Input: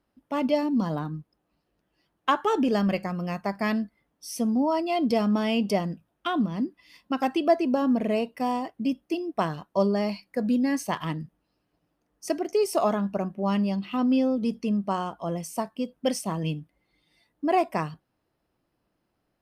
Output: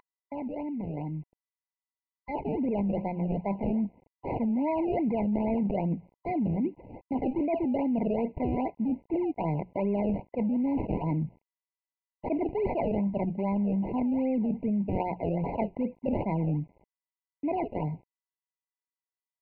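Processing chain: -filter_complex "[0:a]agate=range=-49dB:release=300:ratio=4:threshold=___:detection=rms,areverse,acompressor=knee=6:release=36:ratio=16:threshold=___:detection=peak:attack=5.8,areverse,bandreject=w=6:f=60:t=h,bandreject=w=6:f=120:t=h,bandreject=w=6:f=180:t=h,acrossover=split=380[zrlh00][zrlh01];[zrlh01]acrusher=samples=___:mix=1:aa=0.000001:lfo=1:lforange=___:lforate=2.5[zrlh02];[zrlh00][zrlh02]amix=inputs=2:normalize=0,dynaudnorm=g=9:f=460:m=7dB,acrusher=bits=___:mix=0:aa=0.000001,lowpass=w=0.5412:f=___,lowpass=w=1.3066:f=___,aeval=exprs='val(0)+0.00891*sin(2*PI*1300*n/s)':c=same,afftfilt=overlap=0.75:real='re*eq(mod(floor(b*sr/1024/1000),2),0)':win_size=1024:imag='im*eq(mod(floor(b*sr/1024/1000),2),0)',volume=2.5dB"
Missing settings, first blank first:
-41dB, -35dB, 28, 28, 9, 1.9k, 1.9k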